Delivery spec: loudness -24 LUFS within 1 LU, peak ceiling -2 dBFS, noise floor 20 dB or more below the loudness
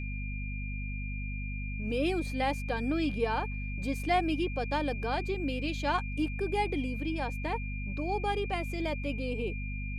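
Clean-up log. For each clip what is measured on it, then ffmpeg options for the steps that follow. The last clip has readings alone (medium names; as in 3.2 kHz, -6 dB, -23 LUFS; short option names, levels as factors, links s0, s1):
hum 50 Hz; highest harmonic 250 Hz; hum level -34 dBFS; steady tone 2.4 kHz; tone level -42 dBFS; loudness -33.0 LUFS; peak level -16.5 dBFS; loudness target -24.0 LUFS
-> -af "bandreject=f=50:t=h:w=4,bandreject=f=100:t=h:w=4,bandreject=f=150:t=h:w=4,bandreject=f=200:t=h:w=4,bandreject=f=250:t=h:w=4"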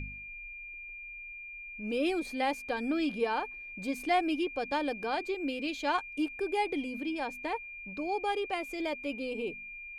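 hum not found; steady tone 2.4 kHz; tone level -42 dBFS
-> -af "bandreject=f=2400:w=30"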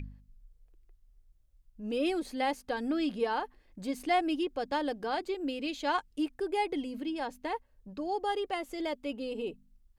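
steady tone not found; loudness -33.5 LUFS; peak level -18.0 dBFS; loudness target -24.0 LUFS
-> -af "volume=2.99"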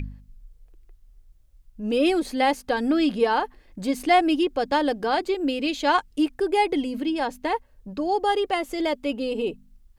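loudness -24.0 LUFS; peak level -8.5 dBFS; noise floor -56 dBFS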